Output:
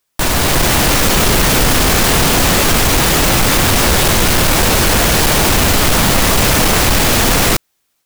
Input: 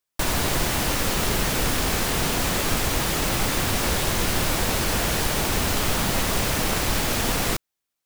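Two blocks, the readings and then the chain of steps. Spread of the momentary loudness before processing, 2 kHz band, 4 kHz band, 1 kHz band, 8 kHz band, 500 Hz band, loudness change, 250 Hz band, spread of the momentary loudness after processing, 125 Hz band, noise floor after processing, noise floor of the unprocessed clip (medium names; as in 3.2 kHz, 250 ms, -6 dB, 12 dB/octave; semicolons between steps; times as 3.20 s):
0 LU, +11.5 dB, +12.0 dB, +11.5 dB, +12.0 dB, +11.5 dB, +12.0 dB, +11.5 dB, 1 LU, +11.5 dB, -66 dBFS, -83 dBFS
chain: in parallel at 0 dB: peak limiter -18.5 dBFS, peak gain reduction 8.5 dB; on the sum: level rider gain up to 6 dB; saturation -14 dBFS, distortion -12 dB; trim +7 dB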